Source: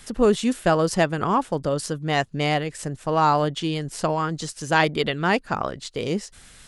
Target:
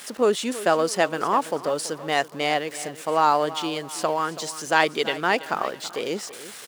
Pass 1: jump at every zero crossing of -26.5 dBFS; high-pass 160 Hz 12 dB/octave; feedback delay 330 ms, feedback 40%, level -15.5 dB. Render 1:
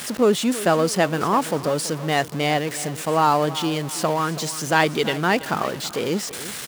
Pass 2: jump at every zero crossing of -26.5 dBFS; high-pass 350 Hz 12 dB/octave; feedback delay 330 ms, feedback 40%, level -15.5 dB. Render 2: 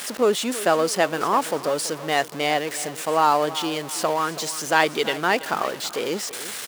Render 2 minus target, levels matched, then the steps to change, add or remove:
jump at every zero crossing: distortion +9 dB
change: jump at every zero crossing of -37 dBFS

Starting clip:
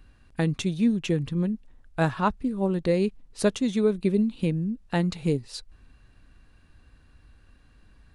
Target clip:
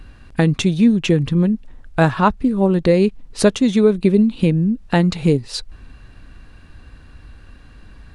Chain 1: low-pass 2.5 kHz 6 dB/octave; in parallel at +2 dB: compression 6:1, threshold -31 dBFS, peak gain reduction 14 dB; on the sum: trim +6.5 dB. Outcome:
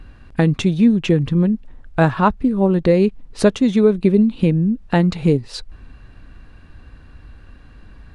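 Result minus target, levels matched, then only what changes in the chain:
8 kHz band -6.0 dB
change: low-pass 6.6 kHz 6 dB/octave

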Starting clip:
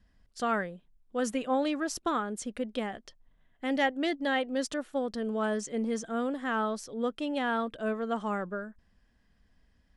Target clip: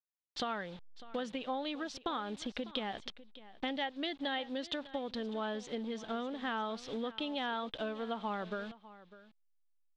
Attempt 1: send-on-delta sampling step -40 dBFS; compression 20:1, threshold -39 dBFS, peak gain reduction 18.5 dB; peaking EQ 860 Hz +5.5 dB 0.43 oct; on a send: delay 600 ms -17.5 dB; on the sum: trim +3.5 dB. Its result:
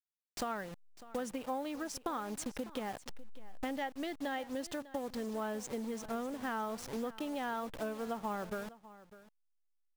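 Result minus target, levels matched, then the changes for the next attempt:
4 kHz band -8.0 dB; send-on-delta sampling: distortion +9 dB
change: send-on-delta sampling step -48.5 dBFS; add after compression: resonant low-pass 3.6 kHz, resonance Q 4.4

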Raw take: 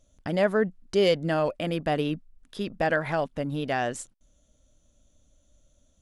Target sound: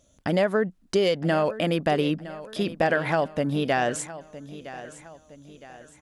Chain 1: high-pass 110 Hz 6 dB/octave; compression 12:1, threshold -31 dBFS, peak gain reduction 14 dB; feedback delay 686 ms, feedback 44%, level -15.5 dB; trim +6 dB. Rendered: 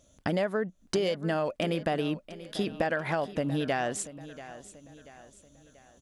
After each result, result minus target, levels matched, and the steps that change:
compression: peak gain reduction +6.5 dB; echo 277 ms early
change: compression 12:1, threshold -24 dBFS, peak gain reduction 7.5 dB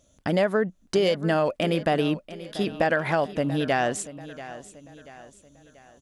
echo 277 ms early
change: feedback delay 963 ms, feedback 44%, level -15.5 dB

